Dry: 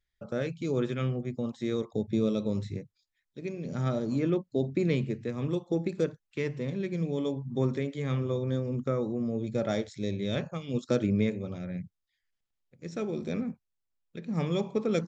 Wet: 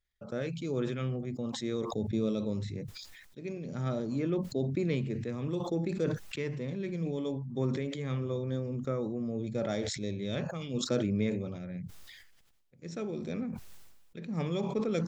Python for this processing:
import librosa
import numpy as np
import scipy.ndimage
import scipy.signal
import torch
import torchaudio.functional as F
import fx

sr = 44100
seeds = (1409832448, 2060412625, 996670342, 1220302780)

y = fx.sustainer(x, sr, db_per_s=39.0)
y = y * librosa.db_to_amplitude(-4.0)